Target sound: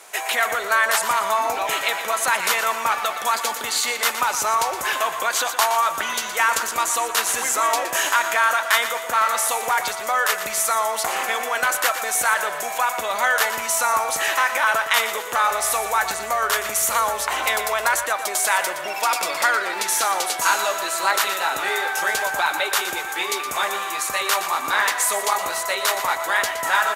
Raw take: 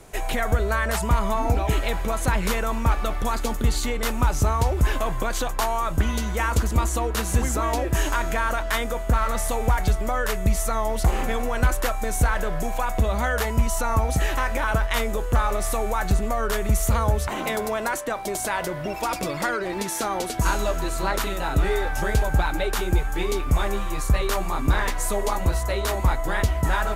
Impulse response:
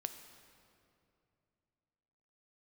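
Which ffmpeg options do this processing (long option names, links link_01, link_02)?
-filter_complex "[0:a]highpass=910,asettb=1/sr,asplit=3[link_01][link_02][link_03];[link_01]atrim=end=15.504[link_04];[link_02]atrim=start=15.5:end=18.04,asetpts=PTS-STARTPTS,afade=type=in:duration=0.004:curve=qsin,afade=type=out:start_time=2.536:duration=0.004:curve=qsin,aeval=exprs='val(0)+0.000891*(sin(2*PI*60*n/s)+sin(2*PI*2*60*n/s)/2+sin(2*PI*3*60*n/s)/3+sin(2*PI*4*60*n/s)/4+sin(2*PI*5*60*n/s)/5)':channel_layout=same[link_05];[link_03]atrim=start=18.036[link_06];[link_04][link_05]acrossfade=duration=0.004:curve1=hsin:curve2=qsin[link_07];[link_07][link_06]acrossfade=duration=0.004:curve1=qsin:curve2=hsin,aecho=1:1:118|236|354|472|590:0.299|0.128|0.0552|0.0237|0.0102,volume=8.5dB"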